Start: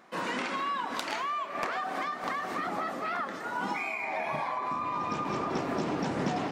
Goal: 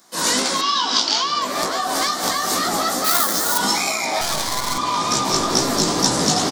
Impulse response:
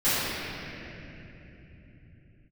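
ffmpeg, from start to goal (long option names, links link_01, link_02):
-filter_complex "[0:a]acrossover=split=1000[link_01][link_02];[link_02]alimiter=level_in=3dB:limit=-24dB:level=0:latency=1:release=444,volume=-3dB[link_03];[link_01][link_03]amix=inputs=2:normalize=0,dynaudnorm=framelen=130:gausssize=3:maxgain=13.5dB,asoftclip=type=tanh:threshold=-15dB,flanger=delay=15:depth=3.9:speed=2.3,asplit=3[link_04][link_05][link_06];[link_04]afade=type=out:start_time=3.04:duration=0.02[link_07];[link_05]acrusher=bits=4:mode=log:mix=0:aa=0.000001,afade=type=in:start_time=3.04:duration=0.02,afade=type=out:start_time=3.57:duration=0.02[link_08];[link_06]afade=type=in:start_time=3.57:duration=0.02[link_09];[link_07][link_08][link_09]amix=inputs=3:normalize=0,asettb=1/sr,asplit=3[link_10][link_11][link_12];[link_10]atrim=end=4.214[link_13];[link_11]atrim=start=4.21:end=4.78,asetpts=PTS-STARTPTS,afade=type=in:duration=0.004:curve=qsin,afade=type=out:start_time=0.566:duration=0.004:curve=qsin,aeval=exprs='max(val(0),0)':channel_layout=same[link_14];[link_12]atrim=start=4.776[link_15];[link_13][link_14]acrossfade=duration=0.004:curve1=hsin:curve2=qsin[link_16];[link_16][link_15]acrossfade=duration=0.004:curve1=qsin:curve2=hsin,aexciter=amount=11:drive=3.9:freq=3800,asettb=1/sr,asplit=3[link_17][link_18][link_19];[link_17]atrim=end=0.614[link_20];[link_18]atrim=start=0.61:end=1.42,asetpts=PTS-STARTPTS,afade=type=in:duration=0.004:curve=qsin,afade=type=out:start_time=0.806:duration=0.004:curve=qsin,highpass=220,equalizer=frequency=580:width_type=q:width=4:gain=-7,equalizer=frequency=1900:width_type=q:width=4:gain=-5,equalizer=frequency=3100:width_type=q:width=4:gain=8,equalizer=frequency=5200:width_type=q:width=4:gain=6,lowpass=frequency=5700:width=0.5412,lowpass=frequency=5700:width=1.3066[link_21];[link_19]atrim=start=1.416[link_22];[link_20][link_21]acrossfade=duration=0.004:curve1=hsin:curve2=qsin[link_23];[link_23][link_22]acrossfade=duration=0.004:curve1=qsin:curve2=hsin,asplit=2[link_24][link_25];[link_25]adelay=1108,volume=-8dB,highshelf=frequency=4000:gain=-24.9[link_26];[link_24][link_26]amix=inputs=2:normalize=0,volume=2dB"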